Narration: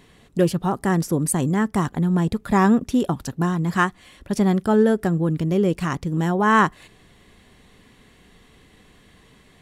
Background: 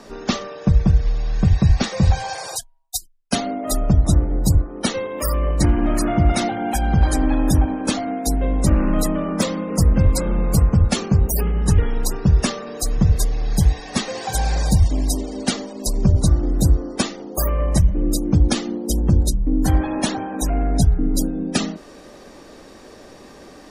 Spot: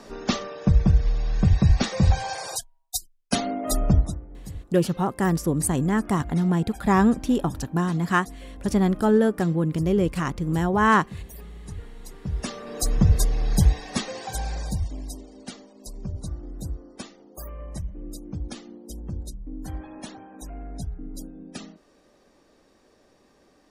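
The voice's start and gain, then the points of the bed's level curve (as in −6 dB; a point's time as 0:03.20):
4.35 s, −2.0 dB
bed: 0:03.98 −3 dB
0:04.19 −21.5 dB
0:12.03 −21.5 dB
0:12.81 −2 dB
0:13.64 −2 dB
0:15.34 −17.5 dB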